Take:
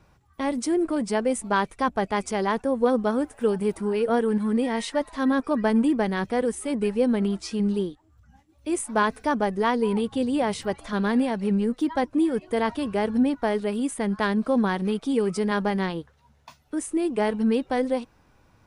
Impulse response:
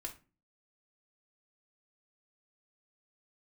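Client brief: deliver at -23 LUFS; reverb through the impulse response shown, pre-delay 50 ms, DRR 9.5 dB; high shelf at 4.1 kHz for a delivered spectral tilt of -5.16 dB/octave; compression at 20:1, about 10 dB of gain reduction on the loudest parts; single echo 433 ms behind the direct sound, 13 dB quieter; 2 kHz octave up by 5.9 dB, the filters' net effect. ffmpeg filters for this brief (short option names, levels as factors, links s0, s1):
-filter_complex "[0:a]equalizer=f=2000:t=o:g=8,highshelf=f=4100:g=-3,acompressor=threshold=0.0501:ratio=20,aecho=1:1:433:0.224,asplit=2[s0][s1];[1:a]atrim=start_sample=2205,adelay=50[s2];[s1][s2]afir=irnorm=-1:irlink=0,volume=0.447[s3];[s0][s3]amix=inputs=2:normalize=0,volume=2.37"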